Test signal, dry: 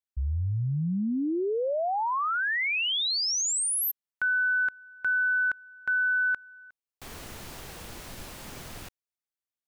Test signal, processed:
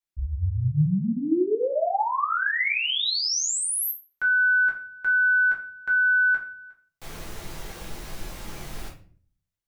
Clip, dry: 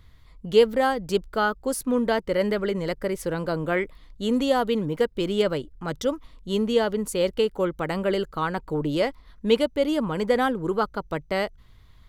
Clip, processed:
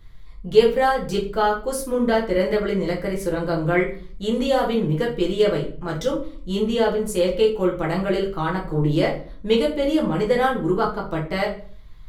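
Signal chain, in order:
rectangular room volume 39 cubic metres, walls mixed, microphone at 0.74 metres
level −2 dB

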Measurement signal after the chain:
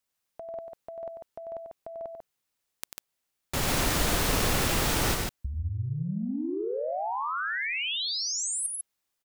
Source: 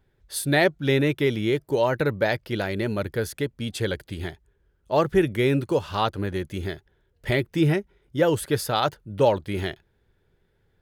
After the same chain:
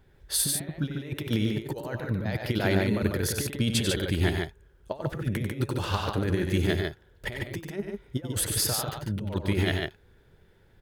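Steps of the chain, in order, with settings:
compressor whose output falls as the input rises −29 dBFS, ratio −0.5
loudspeakers that aren't time-aligned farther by 32 metres −7 dB, 50 metres −4 dB

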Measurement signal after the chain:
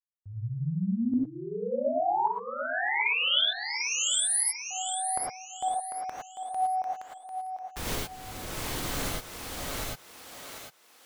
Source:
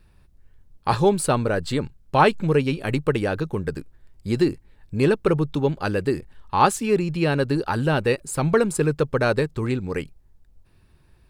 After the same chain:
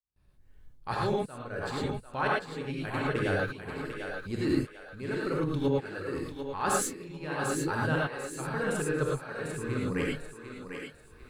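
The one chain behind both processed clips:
noise gate with hold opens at −46 dBFS
dynamic equaliser 1,600 Hz, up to +7 dB, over −40 dBFS, Q 1.7
reversed playback
downward compressor 6 to 1, threshold −30 dBFS
reversed playback
shaped tremolo saw up 0.88 Hz, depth 100%
on a send: feedback echo with a high-pass in the loop 746 ms, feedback 35%, high-pass 390 Hz, level −6.5 dB
on the sum: reverb whose tail is shaped and stops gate 130 ms rising, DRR −3 dB
level +1 dB

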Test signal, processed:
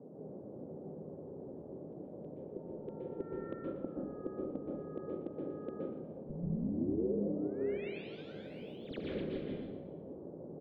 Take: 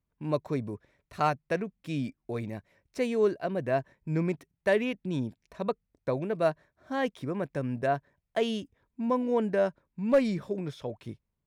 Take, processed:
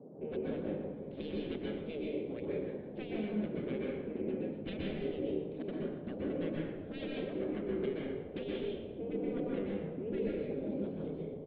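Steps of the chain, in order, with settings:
phase distortion by the signal itself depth 0.32 ms
hum removal 101.3 Hz, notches 4
gate on every frequency bin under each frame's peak −15 dB weak
drawn EQ curve 140 Hz 0 dB, 200 Hz +12 dB, 510 Hz +7 dB, 920 Hz −23 dB, 3,500 Hz −5 dB, 5,900 Hz −30 dB
downward compressor, threshold −47 dBFS
noise in a band 140–560 Hz −61 dBFS
high-frequency loss of the air 340 metres
echo with shifted repeats 118 ms, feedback 47%, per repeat −34 Hz, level −10 dB
dense smooth reverb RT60 0.8 s, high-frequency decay 0.5×, pre-delay 115 ms, DRR −3.5 dB
level +8.5 dB

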